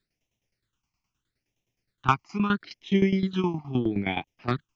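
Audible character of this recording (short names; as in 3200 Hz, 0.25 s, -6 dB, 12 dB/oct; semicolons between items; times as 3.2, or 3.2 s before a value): phasing stages 8, 0.77 Hz, lowest notch 480–1400 Hz; tremolo saw down 9.6 Hz, depth 80%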